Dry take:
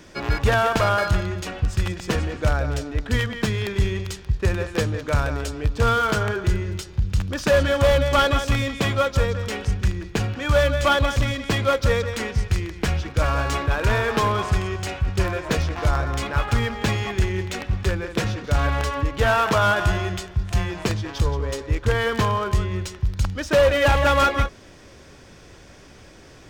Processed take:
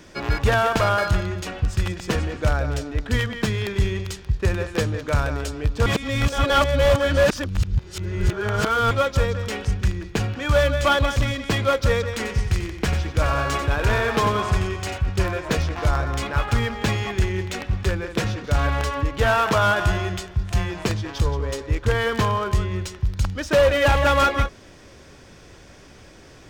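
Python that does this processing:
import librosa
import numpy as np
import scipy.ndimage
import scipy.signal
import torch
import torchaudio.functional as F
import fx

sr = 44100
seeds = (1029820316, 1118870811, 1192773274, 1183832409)

y = fx.echo_feedback(x, sr, ms=91, feedback_pct=23, wet_db=-9, at=(12.15, 14.98))
y = fx.edit(y, sr, fx.reverse_span(start_s=5.86, length_s=3.05), tone=tone)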